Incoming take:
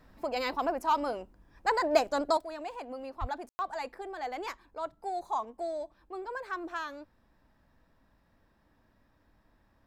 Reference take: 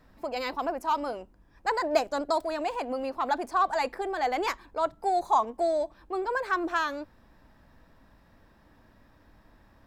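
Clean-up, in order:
0:03.20–0:03.32: high-pass filter 140 Hz 24 dB per octave
ambience match 0:03.49–0:03.59
level 0 dB, from 0:02.37 +9 dB

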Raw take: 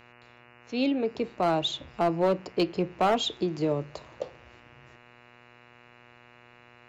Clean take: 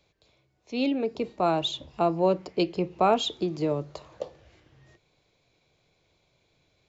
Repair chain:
clipped peaks rebuilt −17.5 dBFS
hum removal 120.8 Hz, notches 24

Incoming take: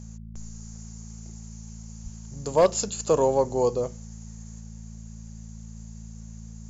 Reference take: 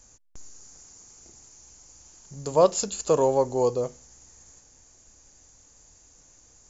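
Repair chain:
clipped peaks rebuilt −11 dBFS
hum removal 55.3 Hz, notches 4
0:02.03–0:02.15: high-pass filter 140 Hz 24 dB per octave

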